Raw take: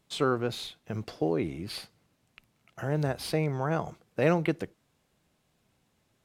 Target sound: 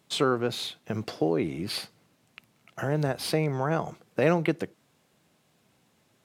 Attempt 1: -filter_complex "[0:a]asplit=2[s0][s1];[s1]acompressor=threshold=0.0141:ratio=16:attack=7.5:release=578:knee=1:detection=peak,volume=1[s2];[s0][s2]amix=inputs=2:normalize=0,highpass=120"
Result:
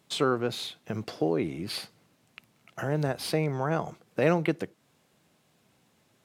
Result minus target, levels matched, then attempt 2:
compression: peak gain reduction +6 dB
-filter_complex "[0:a]asplit=2[s0][s1];[s1]acompressor=threshold=0.0299:ratio=16:attack=7.5:release=578:knee=1:detection=peak,volume=1[s2];[s0][s2]amix=inputs=2:normalize=0,highpass=120"

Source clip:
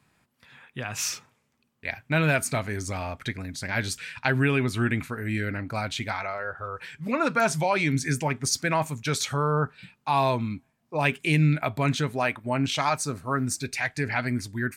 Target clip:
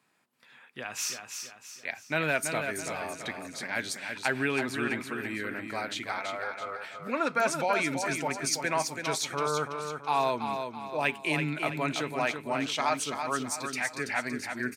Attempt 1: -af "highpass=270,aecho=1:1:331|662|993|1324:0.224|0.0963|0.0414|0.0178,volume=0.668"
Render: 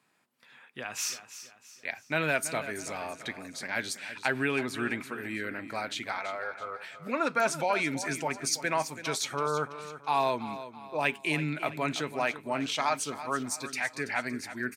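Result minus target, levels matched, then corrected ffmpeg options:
echo-to-direct -6.5 dB
-af "highpass=270,aecho=1:1:331|662|993|1324|1655:0.473|0.203|0.0875|0.0376|0.0162,volume=0.668"

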